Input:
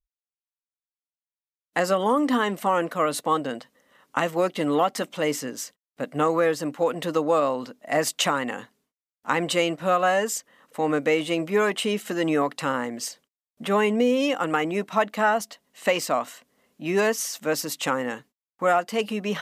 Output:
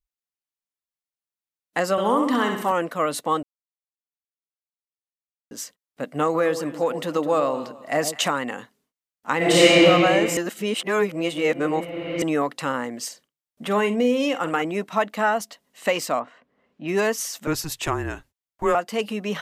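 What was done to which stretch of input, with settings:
0:01.91–0:02.72: flutter between parallel walls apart 11.2 metres, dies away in 0.68 s
0:03.43–0:05.51: silence
0:06.24–0:08.28: delay that swaps between a low-pass and a high-pass 104 ms, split 940 Hz, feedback 51%, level −9.5 dB
0:09.37–0:09.82: thrown reverb, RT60 3 s, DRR −12 dB
0:10.37–0:12.22: reverse
0:13.06–0:14.62: double-tracking delay 49 ms −12.5 dB
0:16.19–0:16.87: low-pass filter 1,400 Hz → 3,400 Hz
0:17.47–0:18.75: frequency shifter −160 Hz

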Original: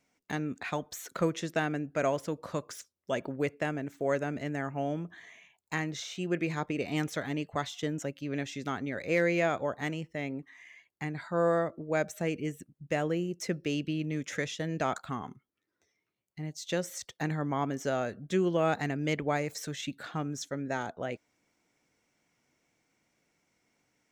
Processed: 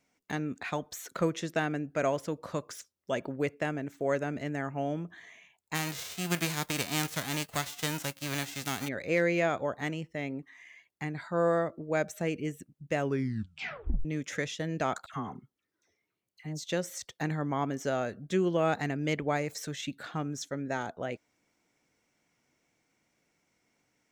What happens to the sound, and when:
0:05.74–0:08.87: spectral envelope flattened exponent 0.3
0:12.96: tape stop 1.09 s
0:15.06–0:16.64: all-pass dispersion lows, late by 72 ms, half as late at 1,400 Hz

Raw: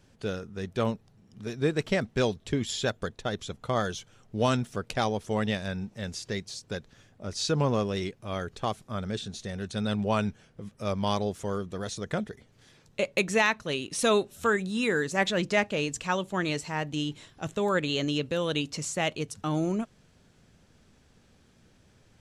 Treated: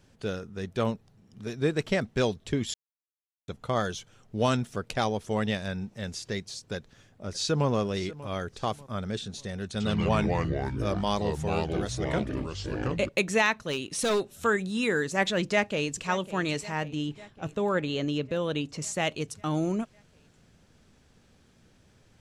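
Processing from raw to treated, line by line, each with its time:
0:02.74–0:03.48: silence
0:06.75–0:07.68: delay throw 590 ms, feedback 40%, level −17 dB
0:09.66–0:13.09: delay with pitch and tempo change per echo 82 ms, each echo −4 semitones, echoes 3
0:13.65–0:14.36: hard clipping −22 dBFS
0:15.42–0:16.07: delay throw 550 ms, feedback 70%, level −16.5 dB
0:16.88–0:18.82: high-shelf EQ 2,700 Hz −9 dB

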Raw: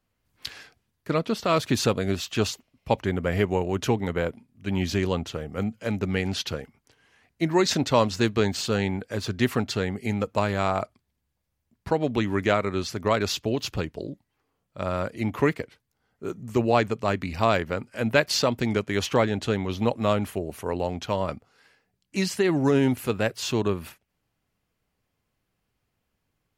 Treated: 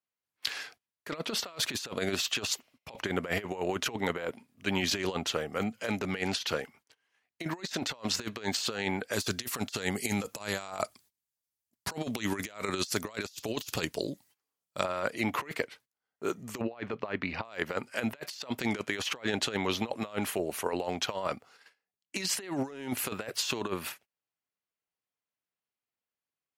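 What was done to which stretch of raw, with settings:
0:09.13–0:14.84: bass and treble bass +4 dB, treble +13 dB
0:16.61–0:17.45: high-frequency loss of the air 270 metres
whole clip: noise gate −57 dBFS, range −21 dB; high-pass filter 730 Hz 6 dB per octave; compressor whose output falls as the input rises −34 dBFS, ratio −0.5; level +1.5 dB

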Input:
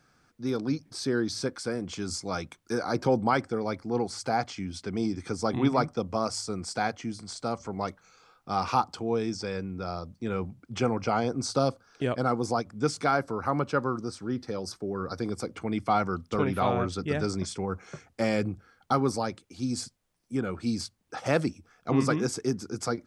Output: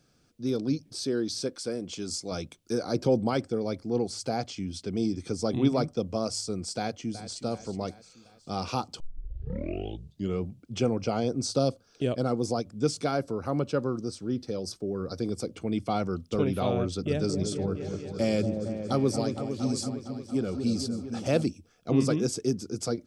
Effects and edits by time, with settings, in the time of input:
0:01.04–0:02.32: parametric band 77 Hz −7.5 dB 2.8 octaves
0:06.77–0:07.42: delay throw 370 ms, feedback 55%, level −13 dB
0:09.00: tape start 1.44 s
0:16.83–0:21.46: echo whose low-pass opens from repeat to repeat 230 ms, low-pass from 750 Hz, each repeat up 1 octave, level −6 dB
whole clip: flat-topped bell 1,300 Hz −10 dB; level +1 dB

